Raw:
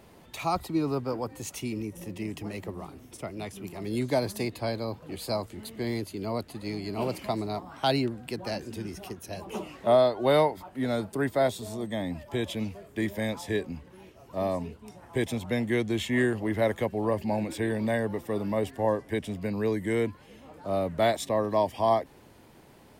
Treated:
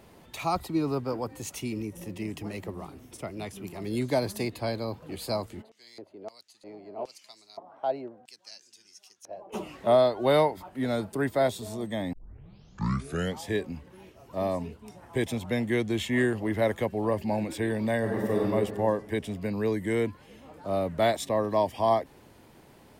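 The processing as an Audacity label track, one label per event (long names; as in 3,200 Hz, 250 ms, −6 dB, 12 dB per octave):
5.610000	9.520000	auto-filter band-pass square 2.1 Hz → 0.35 Hz 630–6,000 Hz
12.130000	12.130000	tape start 1.35 s
17.990000	18.450000	thrown reverb, RT60 1.7 s, DRR −2.5 dB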